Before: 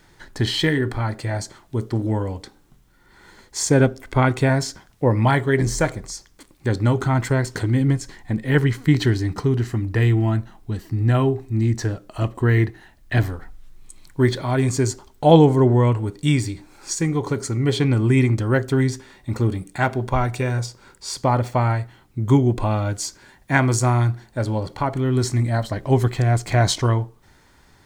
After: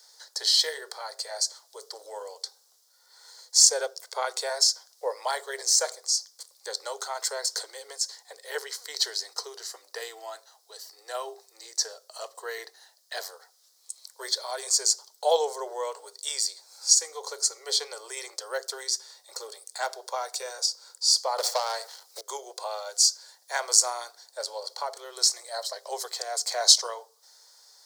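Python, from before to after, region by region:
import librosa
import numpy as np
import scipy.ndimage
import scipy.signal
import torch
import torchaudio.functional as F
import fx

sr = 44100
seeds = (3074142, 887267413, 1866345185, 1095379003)

y = fx.chain(x, sr, fx.leveller(passes=2),
    fx.band_squash(depth_pct=100), at=(21.38, 22.21))
y = scipy.signal.sosfilt(scipy.signal.butter(12, 450.0, 'highpass', fs=sr, output='sos'), y)
y = fx.high_shelf_res(y, sr, hz=3500.0, db=11.5, q=3.0)
y = y * 10.0 ** (-7.5 / 20.0)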